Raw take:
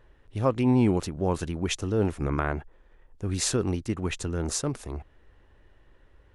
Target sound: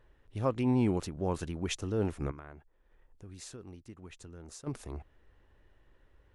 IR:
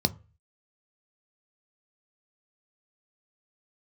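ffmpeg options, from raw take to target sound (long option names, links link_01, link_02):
-filter_complex "[0:a]asplit=3[link_01][link_02][link_03];[link_01]afade=type=out:start_time=2.3:duration=0.02[link_04];[link_02]acompressor=threshold=-51dB:ratio=2,afade=type=in:start_time=2.3:duration=0.02,afade=type=out:start_time=4.66:duration=0.02[link_05];[link_03]afade=type=in:start_time=4.66:duration=0.02[link_06];[link_04][link_05][link_06]amix=inputs=3:normalize=0,volume=-6dB"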